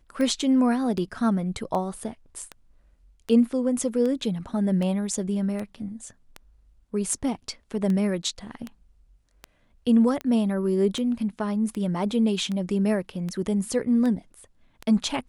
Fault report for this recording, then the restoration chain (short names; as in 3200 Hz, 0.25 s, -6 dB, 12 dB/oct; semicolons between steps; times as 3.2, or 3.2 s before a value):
tick 78 rpm -19 dBFS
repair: de-click